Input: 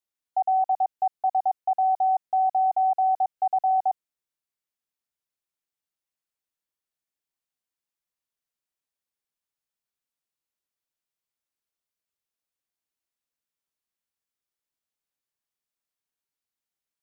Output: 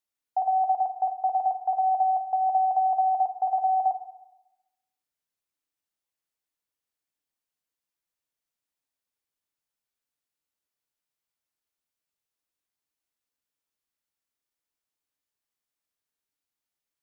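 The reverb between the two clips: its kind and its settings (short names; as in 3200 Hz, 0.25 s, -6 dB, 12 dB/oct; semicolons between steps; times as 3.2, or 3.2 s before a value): FDN reverb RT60 0.96 s, low-frequency decay 0.75×, high-frequency decay 0.5×, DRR 7.5 dB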